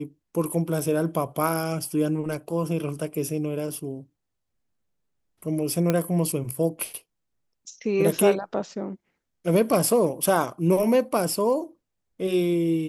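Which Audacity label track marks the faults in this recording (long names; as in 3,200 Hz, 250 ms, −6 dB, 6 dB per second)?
5.900000	5.900000	click −9 dBFS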